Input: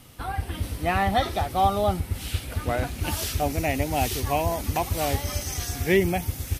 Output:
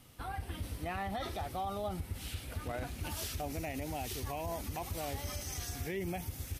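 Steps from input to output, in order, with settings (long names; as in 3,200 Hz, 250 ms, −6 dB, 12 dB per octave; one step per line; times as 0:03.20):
brickwall limiter −20.5 dBFS, peak gain reduction 11.5 dB
level −9 dB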